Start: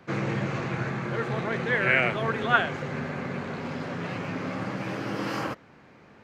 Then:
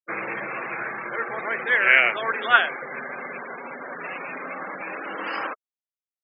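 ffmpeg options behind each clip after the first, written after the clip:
-af "highpass=360,afftfilt=real='re*gte(hypot(re,im),0.0224)':imag='im*gte(hypot(re,im),0.0224)':win_size=1024:overlap=0.75,equalizer=f=2.6k:w=0.34:g=11,volume=-3.5dB"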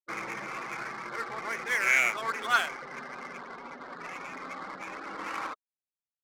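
-af "aecho=1:1:0.9:0.36,adynamicsmooth=sensitivity=5.5:basefreq=770,asoftclip=type=tanh:threshold=-8dB,volume=-6.5dB"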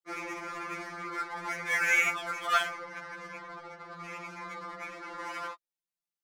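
-af "afftfilt=real='re*2.83*eq(mod(b,8),0)':imag='im*2.83*eq(mod(b,8),0)':win_size=2048:overlap=0.75,volume=1dB"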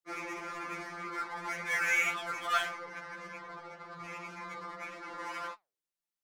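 -filter_complex "[0:a]flanger=delay=4.5:depth=8.3:regen=86:speed=1.8:shape=sinusoidal,asplit=2[a][b];[b]asoftclip=type=hard:threshold=-36dB,volume=-8dB[c];[a][c]amix=inputs=2:normalize=0"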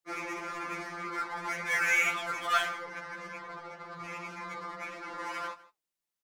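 -af "aecho=1:1:156:0.106,volume=2.5dB"

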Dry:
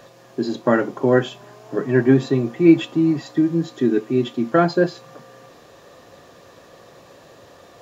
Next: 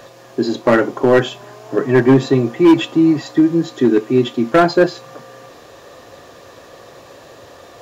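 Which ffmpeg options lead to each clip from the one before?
-af "equalizer=f=180:t=o:w=0.64:g=-6.5,asoftclip=type=hard:threshold=-11.5dB,volume=6.5dB"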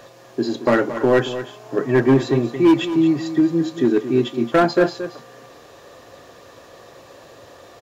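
-af "aecho=1:1:225:0.251,volume=-4dB"

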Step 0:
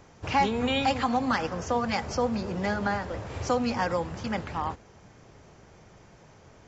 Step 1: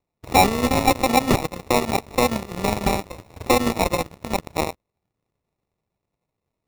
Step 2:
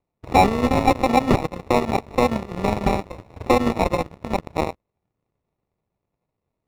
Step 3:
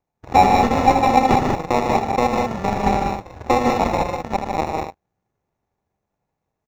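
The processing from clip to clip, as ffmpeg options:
-af "acrusher=samples=28:mix=1:aa=0.000001,aeval=exprs='0.2*(cos(1*acos(clip(val(0)/0.2,-1,1)))-cos(1*PI/2))+0.0282*(cos(7*acos(clip(val(0)/0.2,-1,1)))-cos(7*PI/2))':c=same,volume=8.5dB"
-af "lowpass=f=1.9k:p=1,volume=1.5dB"
-filter_complex "[0:a]equalizer=f=800:t=o:w=0.33:g=7,equalizer=f=1.6k:t=o:w=0.33:g=9,equalizer=f=6.3k:t=o:w=0.33:g=8,equalizer=f=10k:t=o:w=0.33:g=-10,asplit=2[a][b];[b]aecho=0:1:78.72|151.6|195.3:0.447|0.562|0.562[c];[a][c]amix=inputs=2:normalize=0,volume=-2.5dB"

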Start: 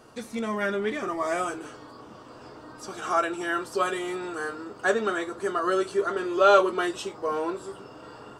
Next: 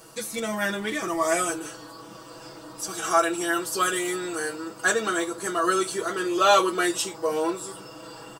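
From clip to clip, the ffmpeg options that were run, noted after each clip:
-af "aemphasis=mode=production:type=75fm,aecho=1:1:6.1:0.81"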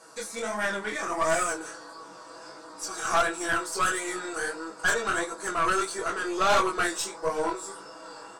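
-af "flanger=delay=18.5:depth=6.9:speed=1.5,highpass=280,equalizer=f=340:t=q:w=4:g=-4,equalizer=f=970:t=q:w=4:g=3,equalizer=f=1.5k:t=q:w=4:g=4,equalizer=f=3k:t=q:w=4:g=-9,lowpass=f=9.7k:w=0.5412,lowpass=f=9.7k:w=1.3066,aeval=exprs='(tanh(11.2*val(0)+0.5)-tanh(0.5))/11.2':c=same,volume=3.5dB"

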